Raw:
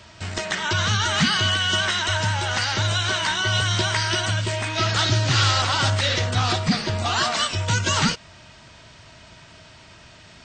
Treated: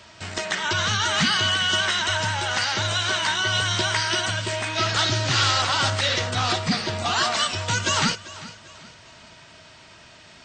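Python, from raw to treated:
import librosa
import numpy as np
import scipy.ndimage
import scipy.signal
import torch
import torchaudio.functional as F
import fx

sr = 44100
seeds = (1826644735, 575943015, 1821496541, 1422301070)

p1 = fx.low_shelf(x, sr, hz=150.0, db=-9.0)
y = p1 + fx.echo_feedback(p1, sr, ms=394, feedback_pct=40, wet_db=-17.5, dry=0)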